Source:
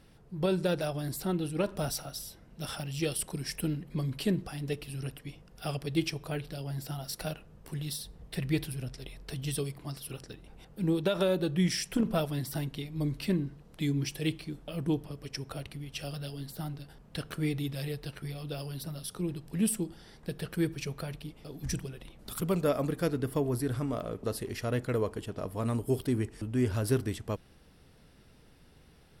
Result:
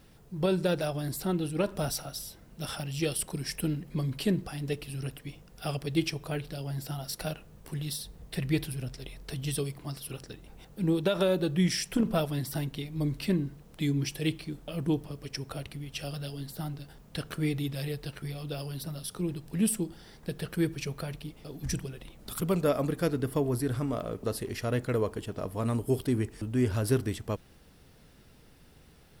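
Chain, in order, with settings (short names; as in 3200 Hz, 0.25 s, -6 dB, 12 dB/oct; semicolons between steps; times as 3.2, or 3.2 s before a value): requantised 12-bit, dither triangular; gain +1.5 dB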